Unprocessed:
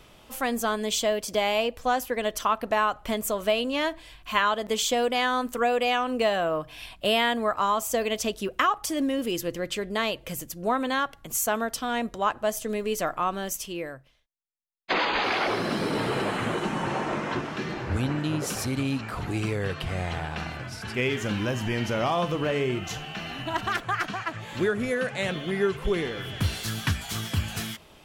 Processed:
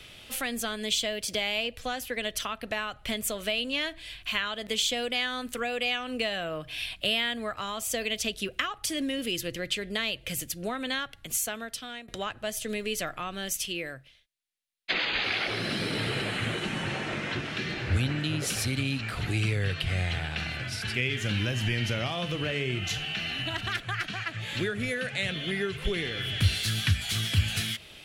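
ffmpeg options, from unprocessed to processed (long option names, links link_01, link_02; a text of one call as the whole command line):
ffmpeg -i in.wav -filter_complex "[0:a]asplit=2[link_01][link_02];[link_01]atrim=end=12.08,asetpts=PTS-STARTPTS,afade=type=out:start_time=11.13:duration=0.95:silence=0.0794328[link_03];[link_02]atrim=start=12.08,asetpts=PTS-STARTPTS,afade=type=in:duration=0.004:curve=hsin:silence=0.0794328[link_04];[link_03][link_04]concat=n=2:v=0:a=1,equalizer=frequency=2500:width_type=o:width=2:gain=10,acrossover=split=170[link_05][link_06];[link_06]acompressor=threshold=-31dB:ratio=2[link_07];[link_05][link_07]amix=inputs=2:normalize=0,equalizer=frequency=100:width_type=o:width=0.67:gain=6,equalizer=frequency=1000:width_type=o:width=0.67:gain=-9,equalizer=frequency=4000:width_type=o:width=0.67:gain=4,equalizer=frequency=10000:width_type=o:width=0.67:gain=7,volume=-1.5dB" out.wav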